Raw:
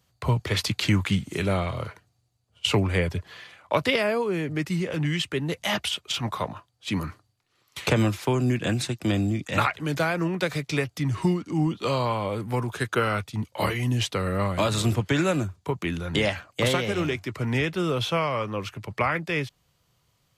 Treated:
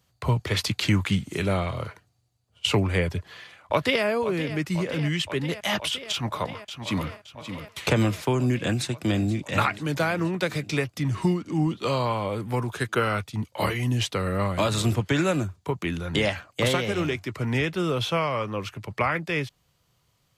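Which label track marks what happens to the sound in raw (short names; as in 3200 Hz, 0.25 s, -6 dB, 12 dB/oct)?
3.180000	4.040000	echo throw 0.52 s, feedback 85%, level -12.5 dB
6.110000	7.080000	echo throw 0.57 s, feedback 35%, level -9 dB
8.600000	9.300000	echo throw 0.48 s, feedback 70%, level -17 dB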